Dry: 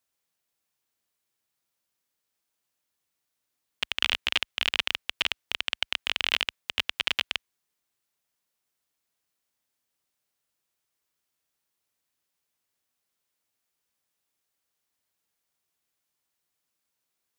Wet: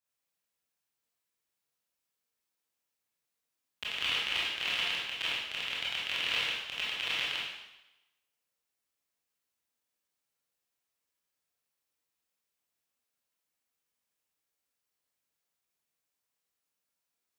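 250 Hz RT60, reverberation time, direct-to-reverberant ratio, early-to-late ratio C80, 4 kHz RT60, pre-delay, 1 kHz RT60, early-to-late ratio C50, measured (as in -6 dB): 0.85 s, 0.95 s, -7.5 dB, 3.0 dB, 0.95 s, 21 ms, 0.95 s, -1.0 dB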